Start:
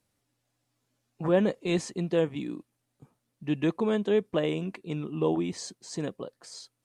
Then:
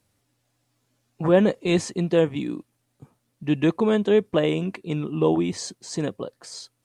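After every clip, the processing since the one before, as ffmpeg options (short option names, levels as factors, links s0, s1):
-af "equalizer=f=98:t=o:w=0.32:g=6,volume=2"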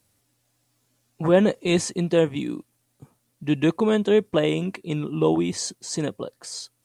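-af "highshelf=f=5700:g=8"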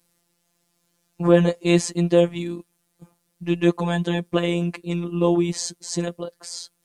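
-af "afftfilt=real='hypot(re,im)*cos(PI*b)':imag='0':win_size=1024:overlap=0.75,volume=1.58"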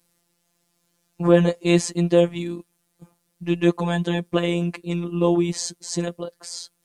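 -af anull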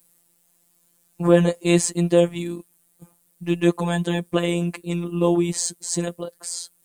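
-af "aexciter=amount=2.6:drive=7:freq=7500"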